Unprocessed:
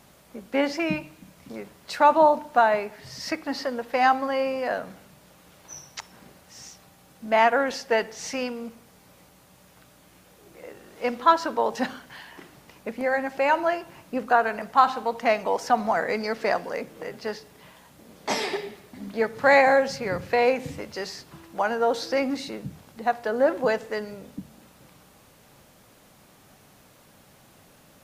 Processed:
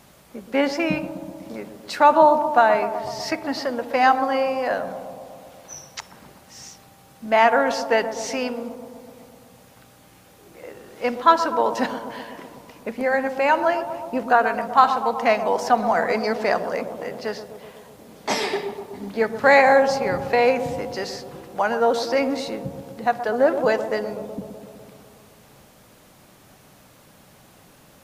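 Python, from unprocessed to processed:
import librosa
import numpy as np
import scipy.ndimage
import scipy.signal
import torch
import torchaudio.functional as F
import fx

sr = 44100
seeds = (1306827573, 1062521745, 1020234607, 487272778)

y = fx.echo_bbd(x, sr, ms=125, stages=1024, feedback_pct=72, wet_db=-10.0)
y = F.gain(torch.from_numpy(y), 3.0).numpy()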